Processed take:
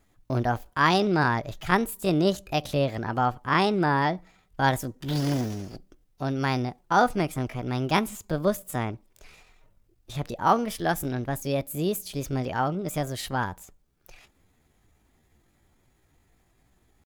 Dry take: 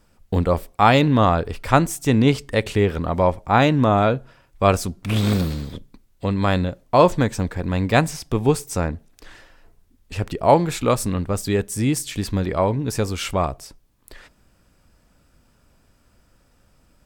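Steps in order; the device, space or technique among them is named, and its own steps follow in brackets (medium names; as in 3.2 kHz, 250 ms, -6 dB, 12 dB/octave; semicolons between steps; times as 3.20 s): chipmunk voice (pitch shift +5.5 st); trim -6.5 dB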